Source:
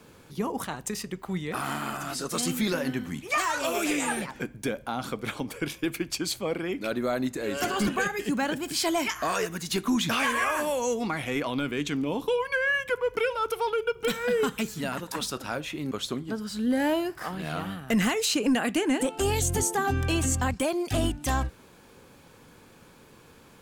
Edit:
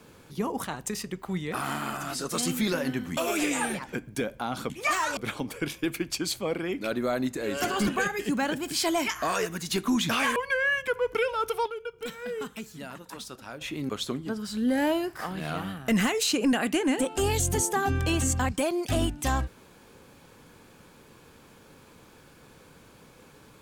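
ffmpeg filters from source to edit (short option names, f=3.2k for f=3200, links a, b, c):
-filter_complex "[0:a]asplit=7[a][b][c][d][e][f][g];[a]atrim=end=3.172[h];[b]atrim=start=3.638:end=5.172[i];[c]atrim=start=3.168:end=3.642[j];[d]atrim=start=5.168:end=10.362[k];[e]atrim=start=12.378:end=13.682[l];[f]atrim=start=13.678:end=15.632,asetpts=PTS-STARTPTS,volume=-9dB[m];[g]atrim=start=15.628[n];[h][i]acrossfade=d=0.004:c1=hsin:c2=hsin[o];[o][j]acrossfade=d=0.004:c1=hsin:c2=hsin[p];[p][k]acrossfade=d=0.004:c1=hsin:c2=hsin[q];[q][l]acrossfade=d=0.004:c1=hsin:c2=hsin[r];[r][m]acrossfade=d=0.004:c1=hsin:c2=hsin[s];[s][n]acrossfade=d=0.004:c1=hsin:c2=hsin"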